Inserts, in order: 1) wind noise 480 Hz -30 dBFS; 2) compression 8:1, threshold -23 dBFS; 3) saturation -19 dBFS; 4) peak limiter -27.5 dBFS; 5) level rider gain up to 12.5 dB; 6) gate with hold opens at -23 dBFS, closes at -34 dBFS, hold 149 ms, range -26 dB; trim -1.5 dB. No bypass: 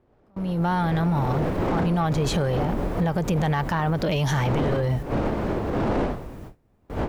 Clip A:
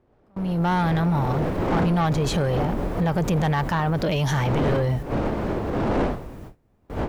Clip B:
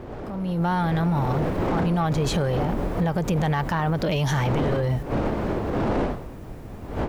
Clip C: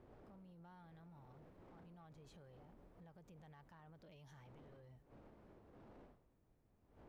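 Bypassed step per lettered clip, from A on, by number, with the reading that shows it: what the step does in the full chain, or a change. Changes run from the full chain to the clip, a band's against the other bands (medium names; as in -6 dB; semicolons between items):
2, mean gain reduction 2.5 dB; 6, momentary loudness spread change +3 LU; 5, loudness change -38.0 LU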